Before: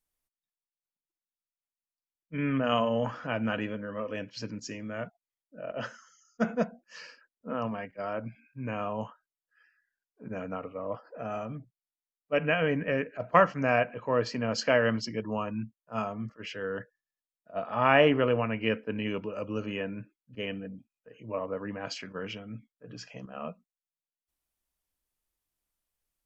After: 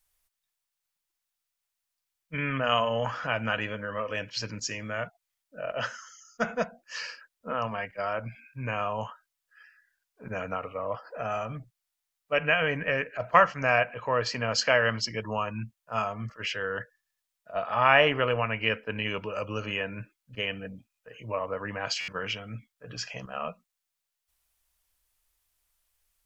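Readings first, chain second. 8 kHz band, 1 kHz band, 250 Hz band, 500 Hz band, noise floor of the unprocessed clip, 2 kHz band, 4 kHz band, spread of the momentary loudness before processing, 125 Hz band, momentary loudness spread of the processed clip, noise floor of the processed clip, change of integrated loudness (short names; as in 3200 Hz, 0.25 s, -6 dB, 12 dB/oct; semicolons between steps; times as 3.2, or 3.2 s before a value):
n/a, +3.5 dB, -5.5 dB, 0.0 dB, under -85 dBFS, +5.0 dB, +6.5 dB, 18 LU, +0.5 dB, 15 LU, -85 dBFS, +1.5 dB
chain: bell 260 Hz -14 dB 2 oct; in parallel at +2 dB: compressor, threshold -42 dBFS, peak gain reduction 21.5 dB; on the sum: stuck buffer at 22, samples 512, times 6; gain +4 dB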